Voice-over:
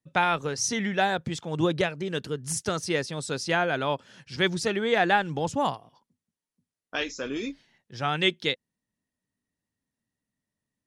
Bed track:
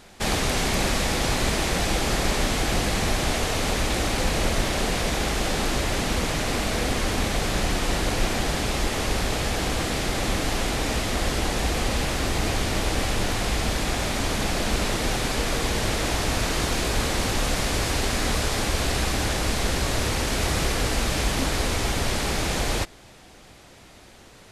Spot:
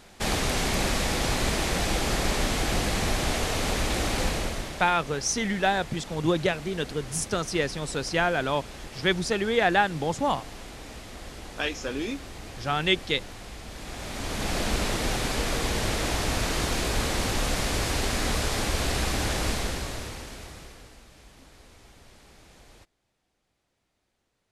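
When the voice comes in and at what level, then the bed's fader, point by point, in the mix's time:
4.65 s, +0.5 dB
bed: 0:04.25 −2.5 dB
0:04.96 −16.5 dB
0:13.66 −16.5 dB
0:14.55 −2.5 dB
0:19.49 −2.5 dB
0:21.06 −28 dB

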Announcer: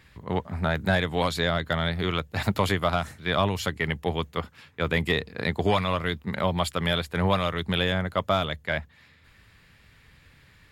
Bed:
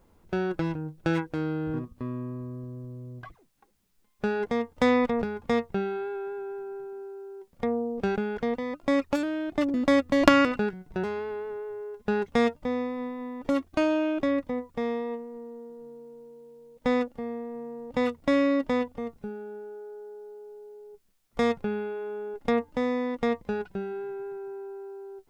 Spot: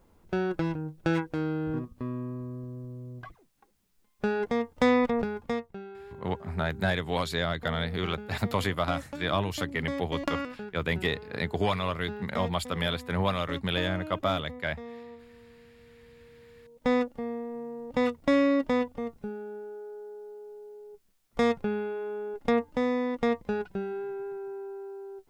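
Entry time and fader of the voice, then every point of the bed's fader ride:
5.95 s, −4.0 dB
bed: 0:05.37 −0.5 dB
0:05.77 −13 dB
0:15.73 −13 dB
0:16.92 0 dB

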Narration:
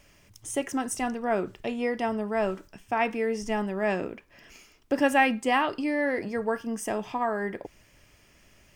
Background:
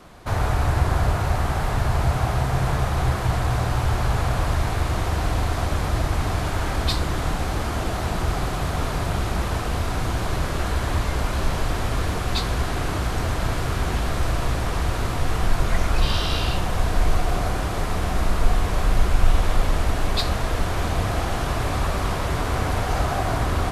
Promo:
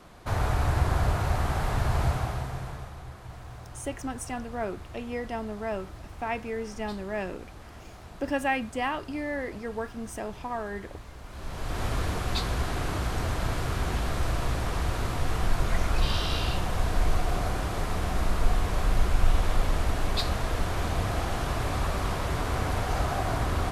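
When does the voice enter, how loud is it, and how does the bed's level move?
3.30 s, −5.5 dB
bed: 0:02.06 −4.5 dB
0:03.04 −21 dB
0:11.22 −21 dB
0:11.83 −5 dB

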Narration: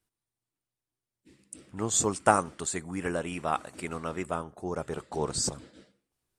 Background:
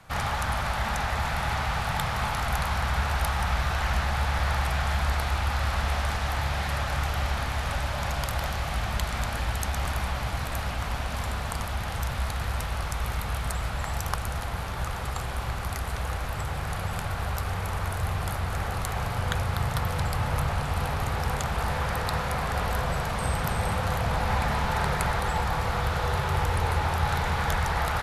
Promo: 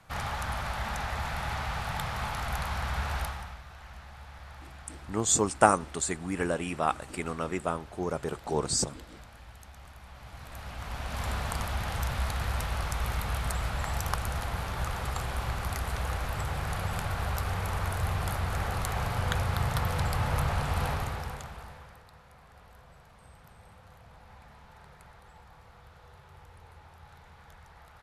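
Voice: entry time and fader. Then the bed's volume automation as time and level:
3.35 s, +1.5 dB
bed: 0:03.20 −5.5 dB
0:03.62 −21 dB
0:10.00 −21 dB
0:11.30 −1.5 dB
0:20.90 −1.5 dB
0:22.09 −27 dB

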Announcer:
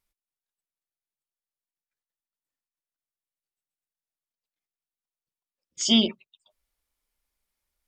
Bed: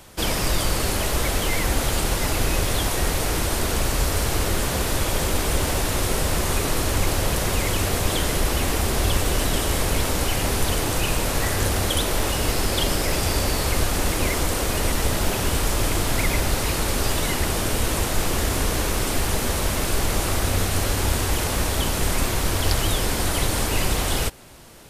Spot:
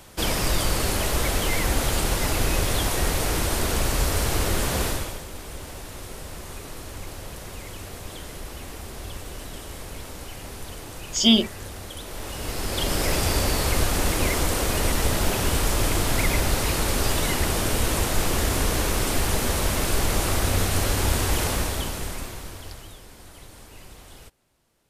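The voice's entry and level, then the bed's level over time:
5.35 s, +3.0 dB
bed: 0:04.86 −1 dB
0:05.24 −15 dB
0:11.98 −15 dB
0:13.04 −0.5 dB
0:21.48 −0.5 dB
0:23.03 −23 dB

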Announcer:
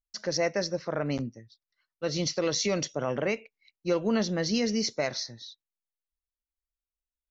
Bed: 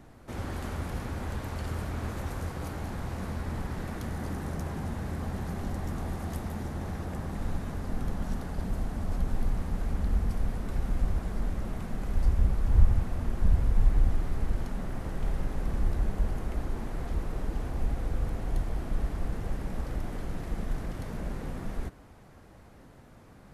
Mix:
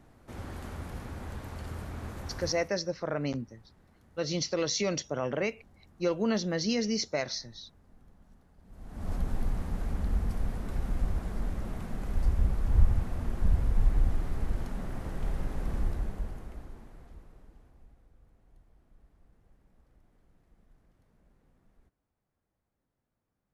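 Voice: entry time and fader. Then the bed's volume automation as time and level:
2.15 s, −2.0 dB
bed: 0:02.49 −5.5 dB
0:02.82 −26.5 dB
0:08.61 −26.5 dB
0:09.08 −2 dB
0:15.80 −2 dB
0:18.11 −31 dB

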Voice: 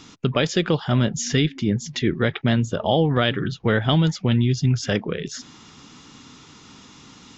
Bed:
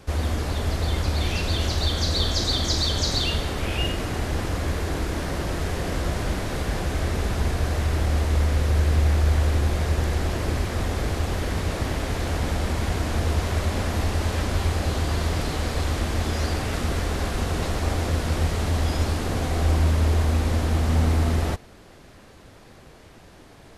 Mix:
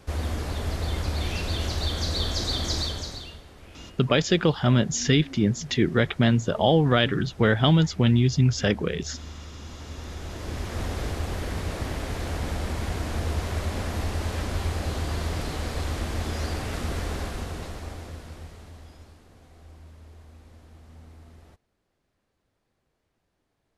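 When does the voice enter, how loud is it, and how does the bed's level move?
3.75 s, −0.5 dB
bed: 0:02.80 −4 dB
0:03.43 −21 dB
0:09.56 −21 dB
0:10.81 −4.5 dB
0:17.14 −4.5 dB
0:19.27 −28 dB

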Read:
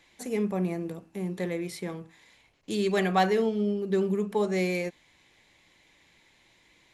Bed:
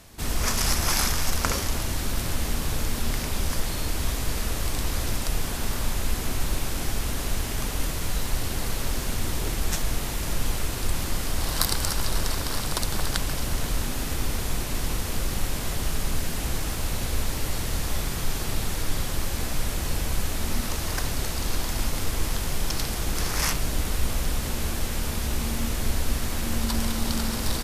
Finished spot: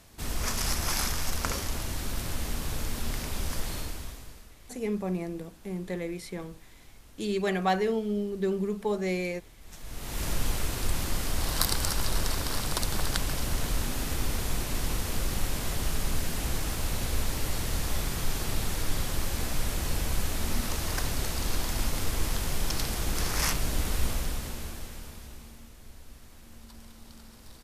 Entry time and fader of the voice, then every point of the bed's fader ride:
4.50 s, −2.5 dB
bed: 0:03.77 −5.5 dB
0:04.55 −26 dB
0:09.59 −26 dB
0:10.21 −2.5 dB
0:24.06 −2.5 dB
0:25.73 −23.5 dB

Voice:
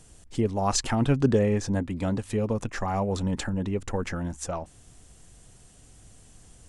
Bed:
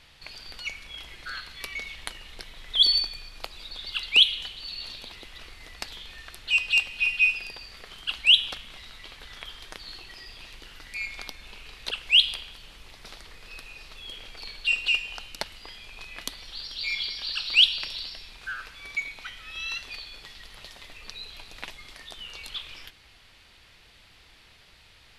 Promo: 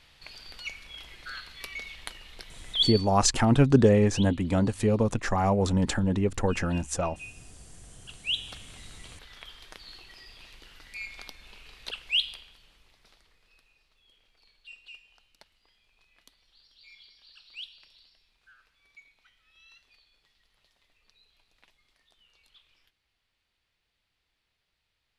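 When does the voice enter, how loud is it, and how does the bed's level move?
2.50 s, +3.0 dB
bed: 0:02.78 −3.5 dB
0:03.21 −23 dB
0:07.82 −23 dB
0:08.64 −5.5 dB
0:11.92 −5.5 dB
0:13.90 −24 dB

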